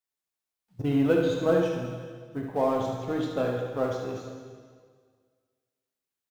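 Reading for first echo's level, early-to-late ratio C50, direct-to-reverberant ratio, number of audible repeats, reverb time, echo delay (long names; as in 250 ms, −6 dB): −6.0 dB, 1.5 dB, −0.5 dB, 1, 1.8 s, 73 ms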